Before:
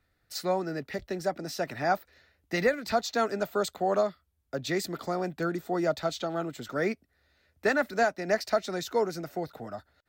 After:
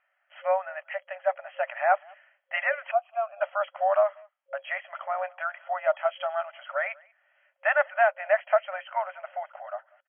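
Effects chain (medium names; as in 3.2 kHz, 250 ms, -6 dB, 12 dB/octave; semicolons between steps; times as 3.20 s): 2.91–3.41 s: vowel filter a; speakerphone echo 190 ms, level -26 dB; FFT band-pass 540–3300 Hz; trim +4.5 dB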